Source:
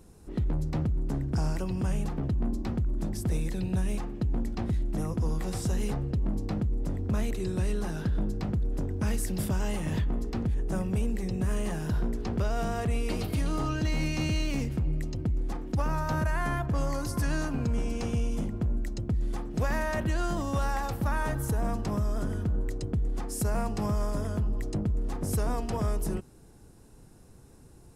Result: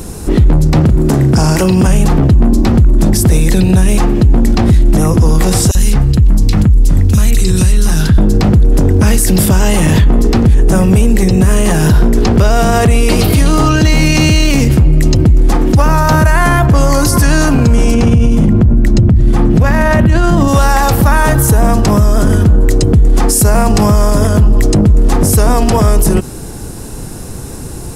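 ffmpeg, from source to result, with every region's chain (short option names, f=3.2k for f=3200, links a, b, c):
-filter_complex "[0:a]asettb=1/sr,asplit=3[a][b][c];[a]atrim=end=0.804[d];[b]atrim=start=0.8:end=1.87,asetpts=PTS-STARTPTS,afade=t=in:d=0.004:c=qsin,afade=t=out:st=1.066:d=0.004:c=qsin,lowshelf=f=88:g=-9.5,asplit=2[e][f];[f]adelay=38,volume=-8.5dB[g];[e][g]amix=inputs=2:normalize=0,atrim=end_sample=47187[h];[c]atrim=start=1.866[i];[d][h]acrossfade=d=0.004:c1=hsin:c2=qsin[j];[j][i]acrossfade=d=0.004:c1=qsin:c2=hsin,asettb=1/sr,asplit=3[k][l][m];[k]atrim=end=5.714[n];[l]atrim=start=5.71:end=8.18,asetpts=PTS-STARTPTS,afade=t=in:d=0.004:c=qsin,afade=t=out:st=2.466:d=0.004:c=qsin,equalizer=f=520:t=o:w=3:g=-13.5,acrossover=split=2600[o][p];[o]adelay=40[q];[q][p]amix=inputs=2:normalize=0,atrim=end_sample=108927[r];[m]atrim=start=8.176[s];[n][r]acrossfade=d=0.004:c1=hsin:c2=qsin[t];[t][s]acrossfade=d=0.004:c1=qsin:c2=hsin,asettb=1/sr,asplit=3[u][v][w];[u]atrim=end=17.944[x];[v]atrim=start=17.94:end=20.48,asetpts=PTS-STARTPTS,afade=t=in:d=0.004:c=qsin,afade=t=out:st=2.536:d=0.004:c=qsin,highpass=63,bass=f=250:g=11,treble=f=4k:g=-8,bandreject=f=50:t=h:w=6,bandreject=f=100:t=h:w=6,bandreject=f=150:t=h:w=6,bandreject=f=200:t=h:w=6,bandreject=f=250:t=h:w=6,bandreject=f=300:t=h:w=6[y];[w]atrim=start=20.476[z];[x][y]acrossfade=d=0.004:c1=hsin:c2=qsin[aa];[aa][z]acrossfade=d=0.004:c1=qsin:c2=hsin,highshelf=f=4.5k:g=5.5,alimiter=level_in=29.5dB:limit=-1dB:release=50:level=0:latency=1,volume=-1dB"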